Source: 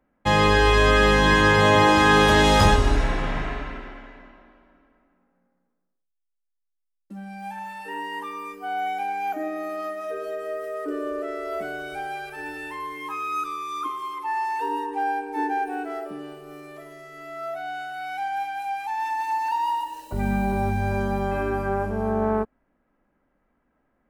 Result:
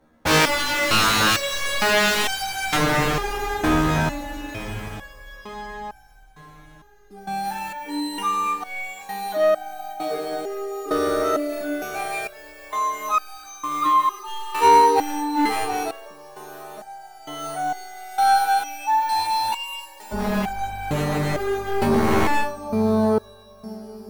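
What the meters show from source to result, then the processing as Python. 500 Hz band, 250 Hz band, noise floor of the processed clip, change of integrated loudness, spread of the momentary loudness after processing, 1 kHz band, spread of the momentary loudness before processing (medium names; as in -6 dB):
+1.0 dB, +2.0 dB, -47 dBFS, +1.5 dB, 19 LU, +3.0 dB, 19 LU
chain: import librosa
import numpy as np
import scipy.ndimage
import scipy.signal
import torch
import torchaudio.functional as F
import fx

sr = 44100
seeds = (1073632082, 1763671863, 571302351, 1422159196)

p1 = fx.sample_hold(x, sr, seeds[0], rate_hz=5000.0, jitter_pct=0)
p2 = x + (p1 * librosa.db_to_amplitude(-4.0))
p3 = fx.echo_diffused(p2, sr, ms=792, feedback_pct=43, wet_db=-11.0)
p4 = fx.fold_sine(p3, sr, drive_db=17, ceiling_db=-0.5)
p5 = fx.resonator_held(p4, sr, hz=2.2, low_hz=78.0, high_hz=780.0)
y = p5 * librosa.db_to_amplitude(-5.0)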